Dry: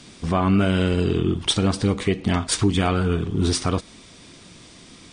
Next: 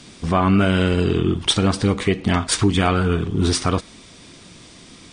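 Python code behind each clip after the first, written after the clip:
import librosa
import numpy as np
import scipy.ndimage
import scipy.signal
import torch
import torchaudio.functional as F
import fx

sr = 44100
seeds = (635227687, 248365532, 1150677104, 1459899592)

y = fx.dynamic_eq(x, sr, hz=1500.0, q=0.74, threshold_db=-34.0, ratio=4.0, max_db=3)
y = y * 10.0 ** (2.0 / 20.0)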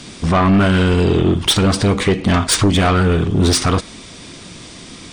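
y = 10.0 ** (-16.0 / 20.0) * np.tanh(x / 10.0 ** (-16.0 / 20.0))
y = y * 10.0 ** (8.0 / 20.0)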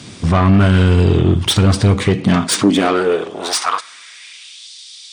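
y = fx.filter_sweep_highpass(x, sr, from_hz=93.0, to_hz=3900.0, start_s=2.0, end_s=4.69, q=2.3)
y = y * 10.0 ** (-1.5 / 20.0)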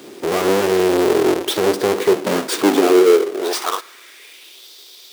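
y = fx.halfwave_hold(x, sr)
y = fx.highpass_res(y, sr, hz=380.0, q=4.4)
y = y * 10.0 ** (-8.5 / 20.0)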